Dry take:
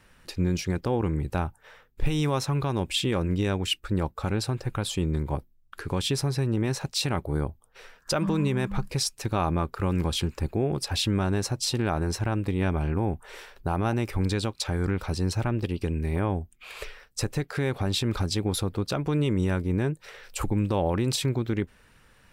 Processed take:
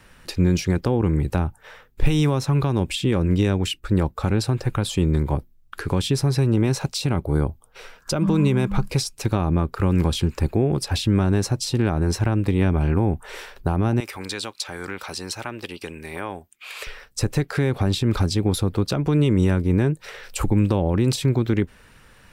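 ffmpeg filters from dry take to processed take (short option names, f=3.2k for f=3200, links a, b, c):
-filter_complex "[0:a]asettb=1/sr,asplit=3[a][b][c];[a]atrim=end=6.384[d];[b]atrim=start=6.38:end=9.26,asetpts=PTS-STARTPTS,afade=t=in:d=0.004:c=qsin,afade=t=out:st=2.876:d=0.004:c=qsin,bandreject=f=1.8k:w=12[e];[c]atrim=start=9.256[f];[d][e]acrossfade=d=0.004:c1=hsin:c2=qsin[g];[g][f]acrossfade=d=0.004:c1=qsin:c2=hsin,asettb=1/sr,asplit=3[h][i][j];[h]atrim=end=14.004[k];[i]atrim=start=14:end=16.87,asetpts=PTS-STARTPTS,afade=t=in:d=0.004:c=qsin,afade=t=out:st=2.866:d=0.004:c=qsin,highpass=f=1.2k:p=1[l];[j]atrim=start=16.866[m];[k][l]acrossfade=d=0.004:c1=hsin:c2=qsin[n];[n][m]acrossfade=d=0.004:c1=qsin:c2=hsin,acrossover=split=400[o][p];[p]acompressor=threshold=-33dB:ratio=6[q];[o][q]amix=inputs=2:normalize=0,volume=7dB"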